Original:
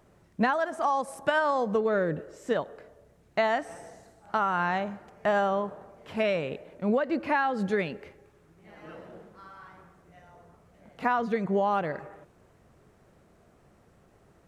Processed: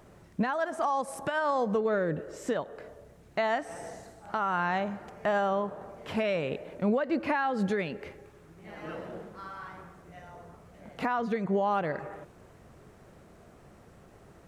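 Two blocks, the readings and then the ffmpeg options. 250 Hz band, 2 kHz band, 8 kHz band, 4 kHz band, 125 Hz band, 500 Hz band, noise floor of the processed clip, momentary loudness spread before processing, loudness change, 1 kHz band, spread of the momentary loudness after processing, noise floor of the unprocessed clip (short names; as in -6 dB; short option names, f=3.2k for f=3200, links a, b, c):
-0.5 dB, -3.0 dB, n/a, -2.0 dB, 0.0 dB, -2.0 dB, -56 dBFS, 18 LU, -2.5 dB, -2.5 dB, 20 LU, -61 dBFS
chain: -filter_complex "[0:a]asplit=2[a][b];[b]acompressor=threshold=-38dB:ratio=6,volume=-0.5dB[c];[a][c]amix=inputs=2:normalize=0,alimiter=limit=-19dB:level=0:latency=1:release=369"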